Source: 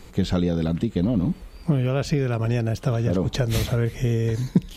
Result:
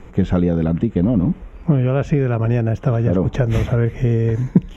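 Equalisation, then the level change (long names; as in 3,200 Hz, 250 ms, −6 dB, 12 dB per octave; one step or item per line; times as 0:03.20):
moving average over 10 samples
+5.5 dB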